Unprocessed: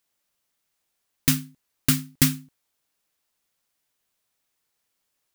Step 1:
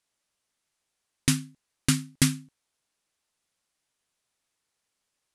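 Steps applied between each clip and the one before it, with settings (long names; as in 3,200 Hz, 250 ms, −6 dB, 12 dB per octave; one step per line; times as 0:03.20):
Butterworth low-pass 11,000 Hz 36 dB per octave
level −1.5 dB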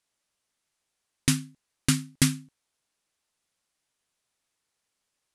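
no processing that can be heard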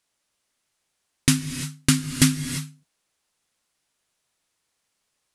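reverb whose tail is shaped and stops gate 370 ms rising, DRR 8.5 dB
level +4.5 dB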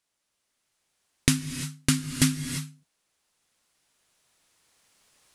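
camcorder AGC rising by 5.6 dB per second
level −4.5 dB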